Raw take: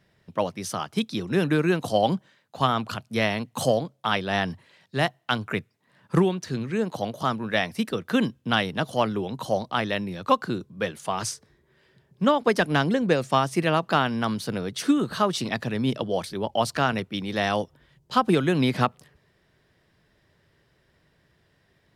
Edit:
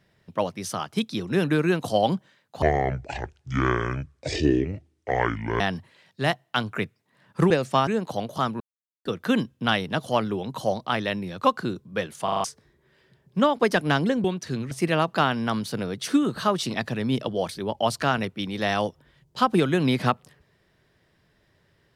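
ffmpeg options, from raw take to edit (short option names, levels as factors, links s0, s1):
-filter_complex "[0:a]asplit=14[s0][s1][s2][s3][s4][s5][s6][s7][s8][s9][s10][s11][s12][s13];[s0]atrim=end=2.624[s14];[s1]atrim=start=2.62:end=4.35,asetpts=PTS-STARTPTS,asetrate=25578,aresample=44100[s15];[s2]atrim=start=4.346:end=6.252[s16];[s3]atrim=start=13.088:end=13.462[s17];[s4]atrim=start=6.718:end=7.45,asetpts=PTS-STARTPTS,afade=t=out:st=0.728:d=0.004:c=hsin[s18];[s5]atrim=start=7.45:end=7.9,asetpts=PTS-STARTPTS,volume=0[s19];[s6]atrim=start=7.9:end=11.132,asetpts=PTS-STARTPTS,afade=t=in:d=0.004:c=hsin[s20];[s7]atrim=start=11.088:end=11.132[s21];[s8]atrim=start=11.088:end=11.132[s22];[s9]atrim=start=11.088:end=11.132[s23];[s10]atrim=start=11.088:end=11.132[s24];[s11]atrim=start=11.288:end=13.092[s25];[s12]atrim=start=6.248:end=6.722[s26];[s13]atrim=start=13.458[s27];[s14][s15]acrossfade=d=0.004:c1=hsin:c2=hsin[s28];[s28][s16]acrossfade=d=0.004:c1=hsin:c2=hsin[s29];[s29][s17]acrossfade=d=0.004:c1=hsin:c2=hsin[s30];[s18][s19][s20]concat=n=3:v=0:a=1[s31];[s30][s31]acrossfade=d=0.004:c1=hsin:c2=hsin[s32];[s32][s21]acrossfade=d=0.004:c1=hsin:c2=hsin[s33];[s33][s22]acrossfade=d=0.004:c1=hsin:c2=hsin[s34];[s34][s23]acrossfade=d=0.004:c1=hsin:c2=hsin[s35];[s35][s24]acrossfade=d=0.004:c1=hsin:c2=hsin[s36];[s36][s25]acrossfade=d=0.004:c1=hsin:c2=hsin[s37];[s37][s26]acrossfade=d=0.004:c1=hsin:c2=hsin[s38];[s38][s27]acrossfade=d=0.004:c1=hsin:c2=hsin"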